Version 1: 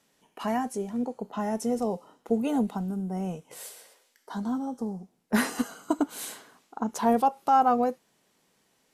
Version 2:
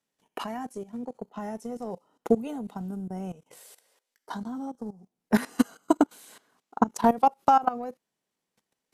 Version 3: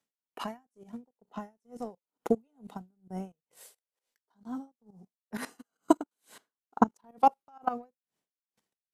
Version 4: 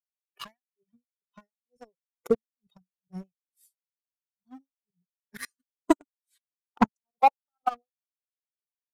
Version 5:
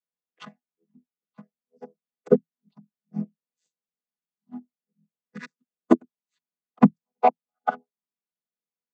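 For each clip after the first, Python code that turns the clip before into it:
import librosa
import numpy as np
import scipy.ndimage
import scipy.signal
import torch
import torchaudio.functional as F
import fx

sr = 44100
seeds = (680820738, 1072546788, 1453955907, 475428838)

y1 = fx.transient(x, sr, attack_db=12, sustain_db=-4)
y1 = fx.level_steps(y1, sr, step_db=17)
y2 = y1 * 10.0 ** (-39 * (0.5 - 0.5 * np.cos(2.0 * np.pi * 2.2 * np.arange(len(y1)) / sr)) / 20.0)
y3 = fx.bin_expand(y2, sr, power=2.0)
y3 = fx.leveller(y3, sr, passes=2)
y4 = fx.chord_vocoder(y3, sr, chord='major triad', root=52)
y4 = y4 * 10.0 ** (5.5 / 20.0)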